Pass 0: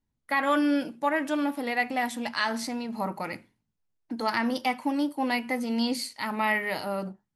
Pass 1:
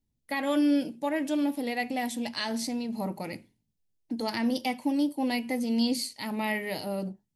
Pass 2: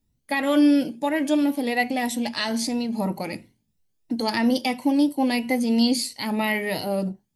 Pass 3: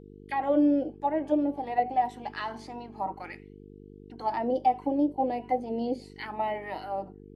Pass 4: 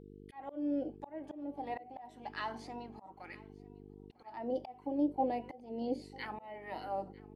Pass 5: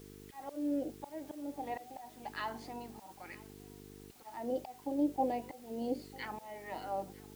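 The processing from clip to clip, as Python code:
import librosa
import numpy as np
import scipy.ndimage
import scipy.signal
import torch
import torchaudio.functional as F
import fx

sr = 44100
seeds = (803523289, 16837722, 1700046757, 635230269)

y1 = fx.peak_eq(x, sr, hz=1300.0, db=-15.0, octaves=1.3)
y1 = F.gain(torch.from_numpy(y1), 2.0).numpy()
y2 = fx.spec_ripple(y1, sr, per_octave=2.0, drift_hz=3.0, depth_db=7)
y2 = F.gain(torch.from_numpy(y2), 6.0).numpy()
y3 = fx.auto_wah(y2, sr, base_hz=530.0, top_hz=3300.0, q=2.9, full_db=-18.0, direction='down')
y3 = fx.small_body(y3, sr, hz=(320.0, 760.0, 3000.0), ring_ms=45, db=9)
y3 = fx.dmg_buzz(y3, sr, base_hz=50.0, harmonics=9, level_db=-49.0, tilt_db=0, odd_only=False)
y4 = fx.auto_swell(y3, sr, attack_ms=424.0)
y4 = fx.echo_feedback(y4, sr, ms=948, feedback_pct=28, wet_db=-22.5)
y4 = F.gain(torch.from_numpy(y4), -4.5).numpy()
y5 = fx.dmg_noise_colour(y4, sr, seeds[0], colour='white', level_db=-62.0)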